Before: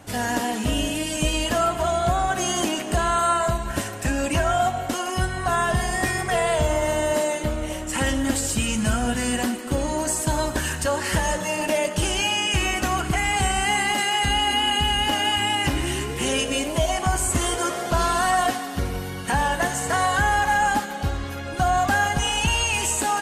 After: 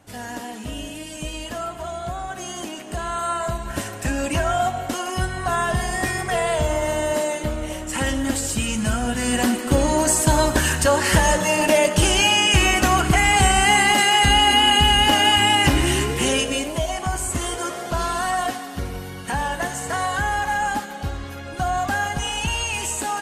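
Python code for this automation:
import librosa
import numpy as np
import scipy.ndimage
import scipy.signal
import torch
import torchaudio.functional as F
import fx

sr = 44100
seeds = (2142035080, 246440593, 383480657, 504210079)

y = fx.gain(x, sr, db=fx.line((2.72, -8.0), (3.91, 0.0), (9.13, 0.0), (9.55, 6.0), (16.04, 6.0), (16.85, -2.5)))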